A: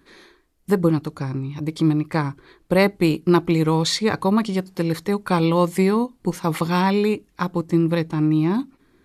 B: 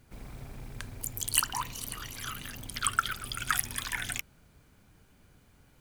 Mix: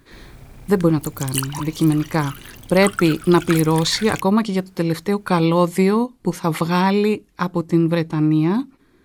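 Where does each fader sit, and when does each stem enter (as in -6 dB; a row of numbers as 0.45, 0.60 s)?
+2.0, +2.0 dB; 0.00, 0.00 s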